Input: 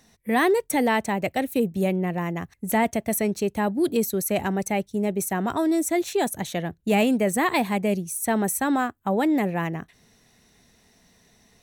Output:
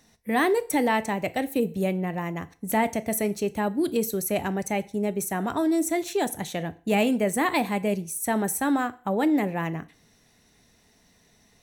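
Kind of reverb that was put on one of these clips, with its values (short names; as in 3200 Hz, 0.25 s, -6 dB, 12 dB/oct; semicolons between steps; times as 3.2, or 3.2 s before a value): FDN reverb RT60 0.43 s, low-frequency decay 0.85×, high-frequency decay 0.95×, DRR 12 dB; gain -2 dB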